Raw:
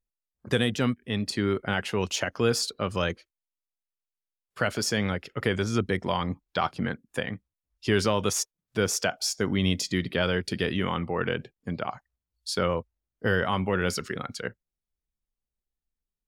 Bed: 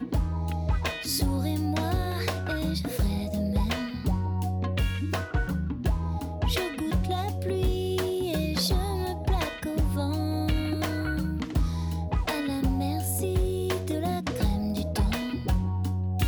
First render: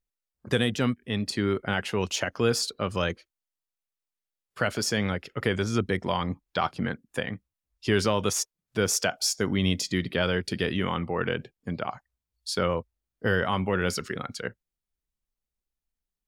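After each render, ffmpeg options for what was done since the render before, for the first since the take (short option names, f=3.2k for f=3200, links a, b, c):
-filter_complex "[0:a]asettb=1/sr,asplit=3[a][b][c];[a]atrim=end=8.864[d];[b]atrim=start=8.86:end=9.5,asetpts=PTS-STARTPTS,afade=t=in:d=0.004:c=qsin,afade=t=out:st=0.636:d=0.004:c=qsin,equalizer=f=12k:t=o:w=2.1:g=3.5[e];[c]atrim=start=9.496[f];[d][e]acrossfade=d=0.004:c1=hsin:c2=qsin[g];[g][f]acrossfade=d=0.004:c1=qsin:c2=hsin"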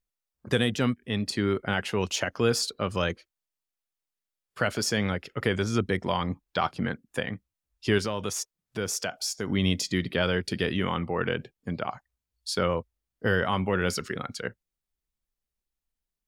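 -filter_complex "[0:a]asettb=1/sr,asplit=3[a][b][c];[a]atrim=end=7.984[d];[b]atrim=start=7.98:end=9.49,asetpts=PTS-STARTPTS,afade=t=in:d=0.004:c=qsin,afade=t=out:st=1.506:d=0.004:c=qsin,acompressor=threshold=-35dB:ratio=1.5:attack=3.2:release=140:knee=1:detection=peak[e];[c]atrim=start=9.486[f];[d][e]acrossfade=d=0.004:c1=hsin:c2=qsin[g];[g][f]acrossfade=d=0.004:c1=qsin:c2=hsin"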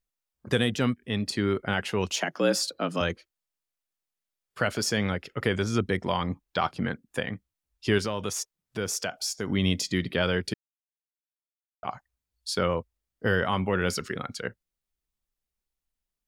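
-filter_complex "[0:a]asettb=1/sr,asplit=3[a][b][c];[a]atrim=end=2.194[d];[b]atrim=start=2.19:end=3.01,asetpts=PTS-STARTPTS,afade=t=in:d=0.004:c=qsin,afade=t=out:st=0.816:d=0.004:c=qsin,afreqshift=75[e];[c]atrim=start=3.006[f];[d][e]acrossfade=d=0.004:c1=hsin:c2=qsin[g];[g][f]acrossfade=d=0.004:c1=qsin:c2=hsin,asplit=3[h][i][j];[h]atrim=end=10.54,asetpts=PTS-STARTPTS,afade=t=out:st=10.536:d=0.004:c=hsin[k];[i]atrim=start=10.54:end=11.83,asetpts=PTS-STARTPTS,volume=0[l];[j]atrim=start=11.83,asetpts=PTS-STARTPTS,afade=t=in:d=0.004:c=hsin[m];[k][l][m]concat=n=3:v=0:a=1"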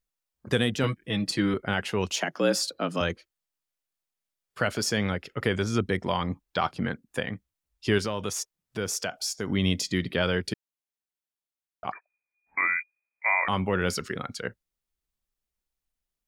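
-filter_complex "[0:a]asettb=1/sr,asplit=3[a][b][c];[a]atrim=end=0.834[d];[b]atrim=start=0.83:end=1.54,asetpts=PTS-STARTPTS,afade=t=in:d=0.004:c=qsin,afade=t=out:st=0.706:d=0.004:c=qsin,aecho=1:1:6.2:0.79,atrim=end_sample=31311[e];[c]atrim=start=1.536[f];[d][e]acrossfade=d=0.004:c1=hsin:c2=qsin[g];[g][f]acrossfade=d=0.004:c1=qsin:c2=hsin,asettb=1/sr,asplit=3[h][i][j];[h]atrim=end=11.924[k];[i]atrim=start=11.92:end=13.48,asetpts=PTS-STARTPTS,afade=t=in:d=0.004:c=qsin,afade=t=out:st=1.556:d=0.004:c=qsin,lowpass=f=2.1k:t=q:w=0.5098,lowpass=f=2.1k:t=q:w=0.6013,lowpass=f=2.1k:t=q:w=0.9,lowpass=f=2.1k:t=q:w=2.563,afreqshift=-2500[l];[j]atrim=start=13.476[m];[k][l]acrossfade=d=0.004:c1=hsin:c2=qsin[n];[n][m]acrossfade=d=0.004:c1=qsin:c2=hsin"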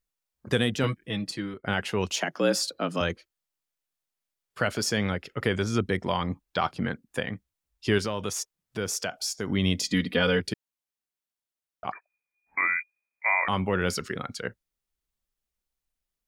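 -filter_complex "[0:a]asettb=1/sr,asplit=3[a][b][c];[a]atrim=end=9.834[d];[b]atrim=start=9.83:end=10.4,asetpts=PTS-STARTPTS,afade=t=in:d=0.004:c=qsin,afade=t=out:st=0.566:d=0.004:c=qsin,aecho=1:1:4.1:0.9,atrim=end_sample=25137[e];[c]atrim=start=10.396[f];[d][e]acrossfade=d=0.004:c1=hsin:c2=qsin[g];[g][f]acrossfade=d=0.004:c1=qsin:c2=hsin,asplit=2[h][i];[h]atrim=end=1.64,asetpts=PTS-STARTPTS,afade=t=out:st=0.94:d=0.7:silence=0.133352[j];[i]atrim=start=1.64,asetpts=PTS-STARTPTS,afade=t=in:d=0.004:c=hsin:silence=0.133352[k];[j][k]concat=n=2:v=0:a=1"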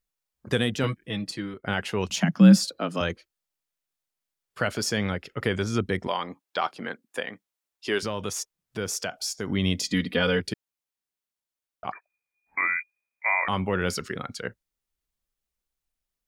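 -filter_complex "[0:a]asettb=1/sr,asplit=3[a][b][c];[a]atrim=end=2.094[d];[b]atrim=start=2.09:end=2.65,asetpts=PTS-STARTPTS,afade=t=in:d=0.004:c=qsin,afade=t=out:st=0.556:d=0.004:c=qsin,lowshelf=f=280:t=q:w=3:g=12[e];[c]atrim=start=2.646[f];[d][e]acrossfade=d=0.004:c1=hsin:c2=qsin[g];[g][f]acrossfade=d=0.004:c1=qsin:c2=hsin,asettb=1/sr,asplit=3[h][i][j];[h]atrim=end=6.074[k];[i]atrim=start=6.07:end=8.03,asetpts=PTS-STARTPTS,afade=t=in:d=0.004:c=qsin,afade=t=out:st=1.956:d=0.004:c=qsin,highpass=340[l];[j]atrim=start=8.026[m];[k][l]acrossfade=d=0.004:c1=hsin:c2=qsin[n];[n][m]acrossfade=d=0.004:c1=qsin:c2=hsin"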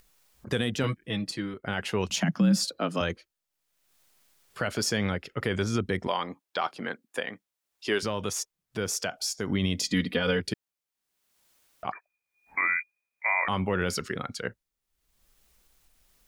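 -af "acompressor=mode=upward:threshold=-46dB:ratio=2.5,alimiter=limit=-15.5dB:level=0:latency=1:release=70"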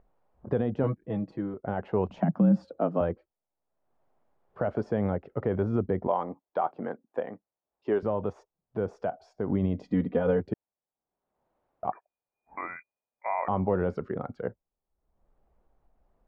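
-af "lowpass=f=750:t=q:w=1.7"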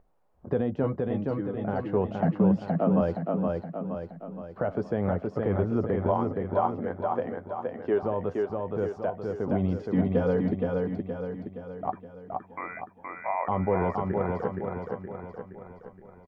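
-filter_complex "[0:a]asplit=2[a][b];[b]adelay=12,volume=-13dB[c];[a][c]amix=inputs=2:normalize=0,aecho=1:1:470|940|1410|1880|2350|2820|3290:0.708|0.361|0.184|0.0939|0.0479|0.0244|0.0125"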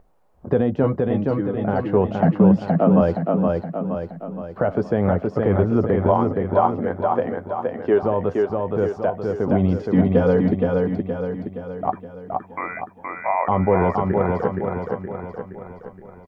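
-af "volume=8dB"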